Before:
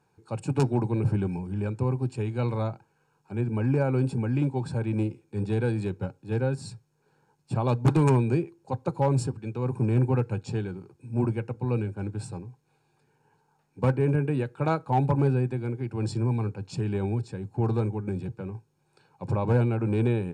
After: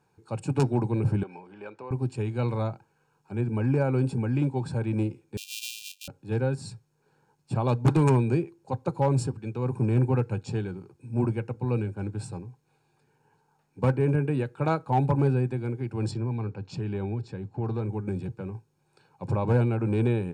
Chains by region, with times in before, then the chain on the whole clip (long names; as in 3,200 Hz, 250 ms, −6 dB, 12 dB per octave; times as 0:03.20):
0:01.23–0:01.91: downward compressor 2.5 to 1, threshold −27 dBFS + band-pass filter 530–3,800 Hz
0:05.37–0:06.08: samples sorted by size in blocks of 128 samples + linear-phase brick-wall high-pass 2,400 Hz
0:16.11–0:17.89: low-pass filter 5,300 Hz + downward compressor 1.5 to 1, threshold −32 dBFS
whole clip: no processing